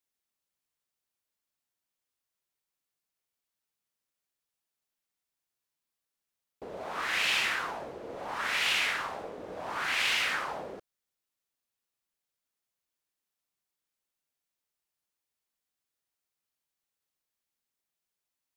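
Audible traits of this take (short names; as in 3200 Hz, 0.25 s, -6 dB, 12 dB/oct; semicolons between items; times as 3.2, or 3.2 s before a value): noise floor -88 dBFS; spectral tilt -0.5 dB/oct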